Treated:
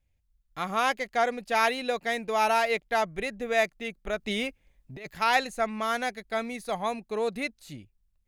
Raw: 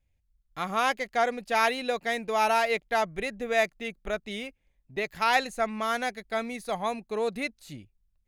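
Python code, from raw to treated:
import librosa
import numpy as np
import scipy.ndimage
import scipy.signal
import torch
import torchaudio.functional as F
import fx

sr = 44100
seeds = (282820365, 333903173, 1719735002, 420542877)

y = fx.over_compress(x, sr, threshold_db=-35.0, ratio=-0.5, at=(4.19, 5.09), fade=0.02)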